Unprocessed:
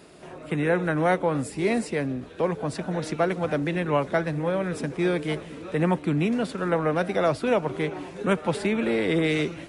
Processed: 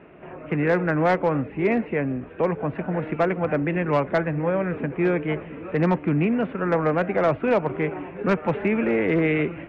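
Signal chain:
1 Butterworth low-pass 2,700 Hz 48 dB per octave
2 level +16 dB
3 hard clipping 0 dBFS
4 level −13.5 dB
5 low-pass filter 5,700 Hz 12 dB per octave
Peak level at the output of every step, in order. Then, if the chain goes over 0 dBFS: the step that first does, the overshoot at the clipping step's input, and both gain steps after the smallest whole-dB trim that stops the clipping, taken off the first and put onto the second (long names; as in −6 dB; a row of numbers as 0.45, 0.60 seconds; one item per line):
−11.0, +5.0, 0.0, −13.5, −13.0 dBFS
step 2, 5.0 dB
step 2 +11 dB, step 4 −8.5 dB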